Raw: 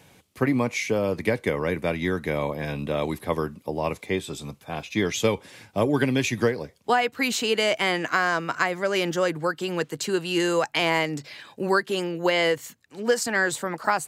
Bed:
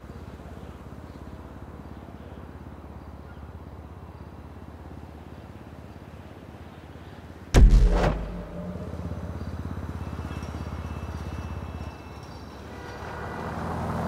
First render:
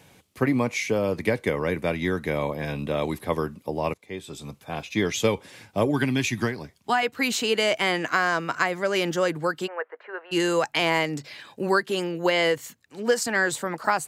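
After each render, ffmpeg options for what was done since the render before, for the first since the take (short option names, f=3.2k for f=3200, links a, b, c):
-filter_complex "[0:a]asettb=1/sr,asplit=3[a][b][c];[a]atrim=end=5.914[d];[b]atrim=start=5.91:end=7.03,asetpts=PTS-STARTPTS,afade=t=in:d=0.004:c=qsin,afade=t=out:st=1.116:d=0.004:c=qsin,equalizer=f=500:t=o:w=0.44:g=-12.5[e];[c]atrim=start=7.026[f];[d][e]acrossfade=d=0.004:c1=hsin:c2=qsin[g];[g][f]acrossfade=d=0.004:c1=qsin:c2=hsin,asplit=3[h][i][j];[h]afade=t=out:st=9.66:d=0.02[k];[i]asuperpass=centerf=1000:order=8:qfactor=0.68,afade=t=in:st=9.66:d=0.02,afade=t=out:st=10.31:d=0.02[l];[j]afade=t=in:st=10.31:d=0.02[m];[k][l][m]amix=inputs=3:normalize=0,asplit=2[n][o];[n]atrim=end=3.94,asetpts=PTS-STARTPTS,afade=t=out:st=3.936:d=0.004:c=hsin:silence=0.0749894[p];[o]atrim=start=3.94,asetpts=PTS-STARTPTS,afade=t=in:d=0.67:silence=0.0749894[q];[p][q]concat=n=2:v=0:a=1"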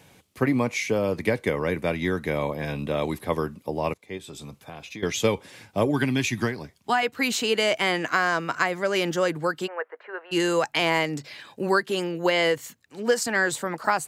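-filter_complex "[0:a]asettb=1/sr,asplit=3[a][b][c];[a]atrim=end=4.174[d];[b]atrim=start=4.17:end=5.03,asetpts=PTS-STARTPTS,afade=t=in:d=0.004:c=qsin,afade=t=out:st=0.856:d=0.004:c=qsin,acompressor=threshold=-35dB:ratio=6:attack=3.2:release=140:knee=1:detection=peak[e];[c]atrim=start=5.026[f];[d][e]acrossfade=d=0.004:c1=hsin:c2=qsin[g];[g][f]acrossfade=d=0.004:c1=qsin:c2=hsin"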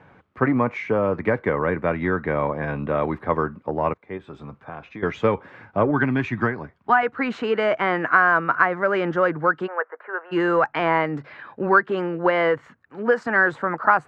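-filter_complex "[0:a]asplit=2[a][b];[b]asoftclip=type=hard:threshold=-21dB,volume=-10dB[c];[a][c]amix=inputs=2:normalize=0,lowpass=f=1.4k:t=q:w=2.3"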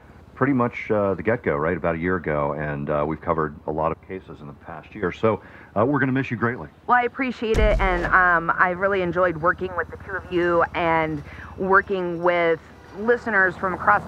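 -filter_complex "[1:a]volume=-6.5dB[a];[0:a][a]amix=inputs=2:normalize=0"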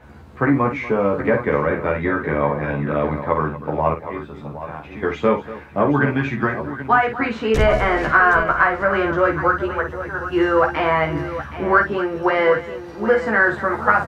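-filter_complex "[0:a]asplit=2[a][b];[b]adelay=14,volume=-2.5dB[c];[a][c]amix=inputs=2:normalize=0,aecho=1:1:50|239|770:0.422|0.168|0.251"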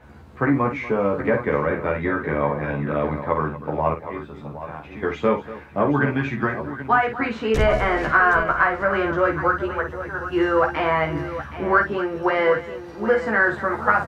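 -af "volume=-2.5dB"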